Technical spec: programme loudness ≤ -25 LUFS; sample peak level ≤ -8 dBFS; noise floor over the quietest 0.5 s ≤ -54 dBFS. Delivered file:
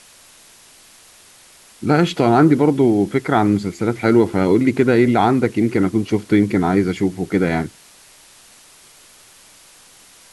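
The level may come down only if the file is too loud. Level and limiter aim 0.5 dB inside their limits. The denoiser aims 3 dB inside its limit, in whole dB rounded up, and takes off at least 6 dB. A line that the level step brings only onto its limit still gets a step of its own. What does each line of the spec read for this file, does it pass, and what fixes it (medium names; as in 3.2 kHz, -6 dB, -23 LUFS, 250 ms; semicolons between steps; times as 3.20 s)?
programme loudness -17.0 LUFS: fail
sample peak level -3.0 dBFS: fail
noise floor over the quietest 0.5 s -47 dBFS: fail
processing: trim -8.5 dB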